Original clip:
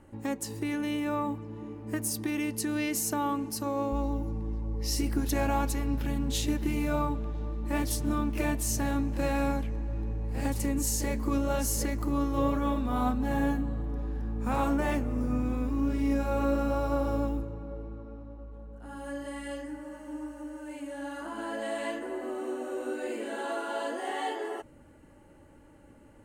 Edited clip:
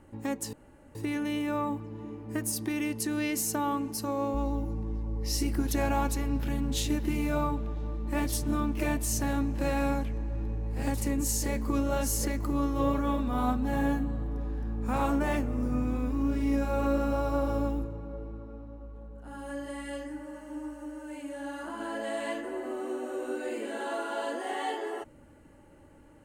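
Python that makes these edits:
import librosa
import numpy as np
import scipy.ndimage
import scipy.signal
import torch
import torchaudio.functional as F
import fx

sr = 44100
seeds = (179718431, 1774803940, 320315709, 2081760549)

y = fx.edit(x, sr, fx.insert_room_tone(at_s=0.53, length_s=0.42), tone=tone)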